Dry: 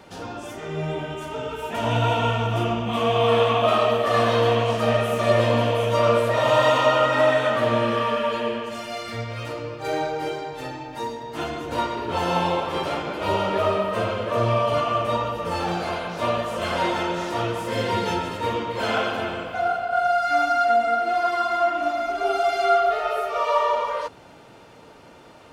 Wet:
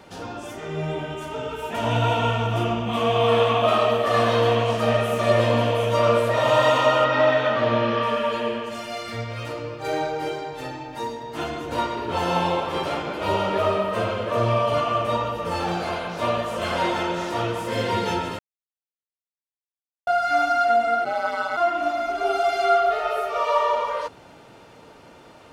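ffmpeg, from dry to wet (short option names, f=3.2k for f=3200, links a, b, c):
-filter_complex "[0:a]asettb=1/sr,asplit=3[a][b][c];[a]atrim=end=7.044[d];[b]atrim=start=7.04:end=8.03,asetpts=PTS-STARTPTS,afade=t=in:d=0.004:c=qsin,afade=t=out:st=0.986:d=0.004:c=qsin,lowpass=f=5.6k:w=0.5412,lowpass=f=5.6k:w=1.3066[e];[c]atrim=start=8.026[f];[d][e]acrossfade=d=0.004:c1=hsin:c2=qsin[g];[g][f]acrossfade=d=0.004:c1=qsin:c2=hsin,asplit=3[h][i][j];[h]afade=t=out:st=21.04:d=0.02[k];[i]aeval=exprs='val(0)*sin(2*PI*96*n/s)':c=same,afade=t=in:st=21.04:d=0.02,afade=t=out:st=21.56:d=0.02[l];[j]afade=t=in:st=21.56:d=0.02[m];[k][l][m]amix=inputs=3:normalize=0,asplit=3[n][o][p];[n]atrim=end=18.39,asetpts=PTS-STARTPTS,afade=t=out:st=18.386:d=0.004:c=hsin[q];[o]atrim=start=18.39:end=20.07,asetpts=PTS-STARTPTS,volume=0[r];[p]atrim=start=20.07,asetpts=PTS-STARTPTS,afade=t=in:d=0.004:c=hsin[s];[q][r][s]concat=n=3:v=0:a=1"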